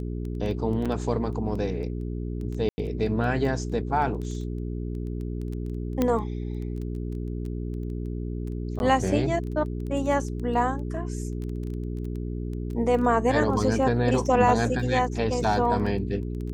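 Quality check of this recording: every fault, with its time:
crackle 10/s -32 dBFS
hum 60 Hz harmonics 7 -31 dBFS
0.85–0.86 gap 6.1 ms
2.69–2.78 gap 90 ms
6.02 pop -11 dBFS
8.79–8.8 gap 11 ms

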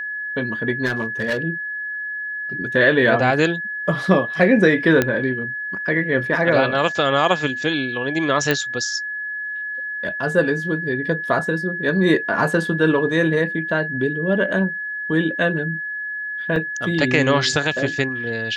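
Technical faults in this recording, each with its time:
tone 1700 Hz -25 dBFS
0.85–1.38 clipped -17 dBFS
5.02 pop -4 dBFS
8.51 pop -5 dBFS
16.56 gap 2.1 ms

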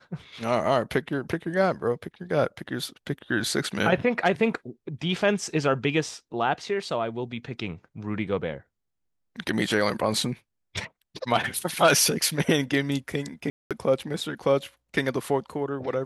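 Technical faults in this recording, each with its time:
13.5–13.71 gap 0.207 s

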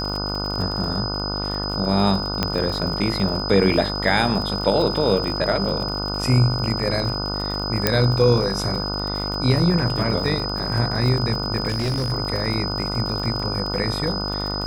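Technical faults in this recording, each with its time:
buzz 50 Hz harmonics 30 -28 dBFS
crackle 57/s -28 dBFS
tone 5000 Hz -27 dBFS
2.43 pop -6 dBFS
7.87 pop -1 dBFS
11.68–12.13 clipped -19.5 dBFS

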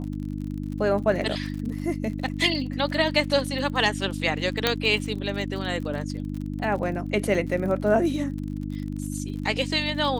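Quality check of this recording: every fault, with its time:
crackle 45/s -33 dBFS
hum 50 Hz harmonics 6 -31 dBFS
4.67 pop -5 dBFS

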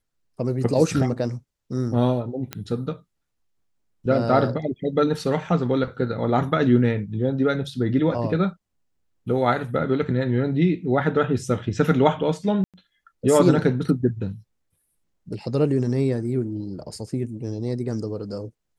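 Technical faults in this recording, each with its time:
2.53 pop -13 dBFS
12.64–12.74 gap 97 ms

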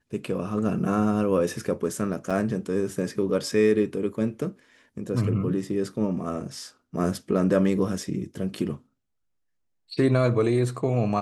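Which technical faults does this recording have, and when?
2.3–2.31 gap 5.9 ms

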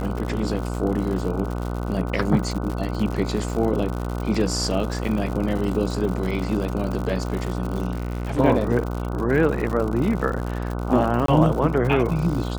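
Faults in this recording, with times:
buzz 60 Hz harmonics 25 -27 dBFS
crackle 110/s -28 dBFS
7.91–8.4 clipped -22.5 dBFS
11.26–11.28 gap 23 ms

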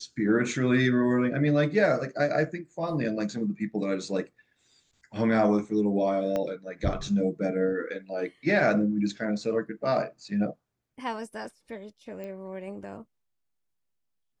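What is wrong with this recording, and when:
6.36 pop -17 dBFS
12.24 pop -27 dBFS

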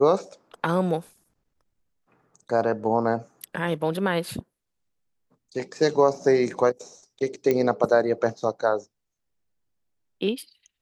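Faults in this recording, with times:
7.51 pop -11 dBFS

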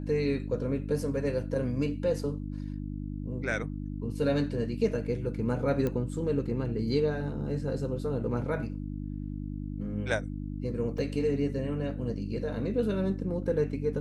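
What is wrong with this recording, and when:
hum 50 Hz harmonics 6 -36 dBFS
5.87 pop -19 dBFS
10.98 gap 3.3 ms

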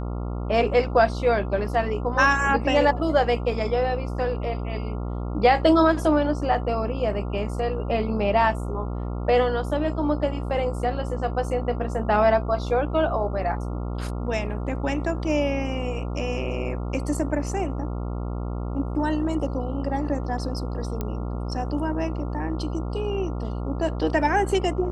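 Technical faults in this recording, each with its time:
buzz 60 Hz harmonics 23 -29 dBFS
21.01 pop -15 dBFS

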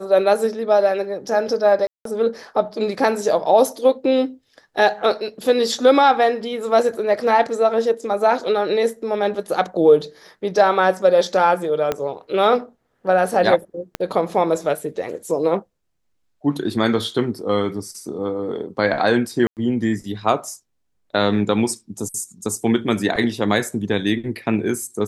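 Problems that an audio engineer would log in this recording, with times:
1.87–2.05 gap 0.183 s
11.92 pop -8 dBFS
13.95 pop -10 dBFS
19.47–19.57 gap 98 ms

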